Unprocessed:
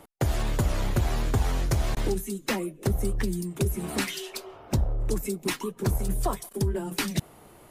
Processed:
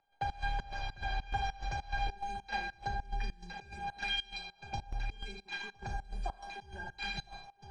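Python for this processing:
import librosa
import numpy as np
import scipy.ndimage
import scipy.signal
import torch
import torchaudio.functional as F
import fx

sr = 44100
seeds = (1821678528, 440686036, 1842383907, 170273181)

y = scipy.signal.sosfilt(scipy.signal.butter(4, 4400.0, 'lowpass', fs=sr, output='sos'), x)
y = fx.peak_eq(y, sr, hz=260.0, db=-9.0, octaves=0.38)
y = fx.comb_fb(y, sr, f0_hz=800.0, decay_s=0.21, harmonics='all', damping=0.0, mix_pct=100)
y = y + 10.0 ** (-11.5 / 20.0) * np.pad(y, (int(1013 * sr / 1000.0), 0))[:len(y)]
y = fx.rev_schroeder(y, sr, rt60_s=0.72, comb_ms=28, drr_db=3.0)
y = fx.volume_shaper(y, sr, bpm=100, per_beat=2, depth_db=-20, release_ms=121.0, shape='slow start')
y = fx.low_shelf(y, sr, hz=140.0, db=-10.0)
y = F.gain(torch.from_numpy(y), 14.0).numpy()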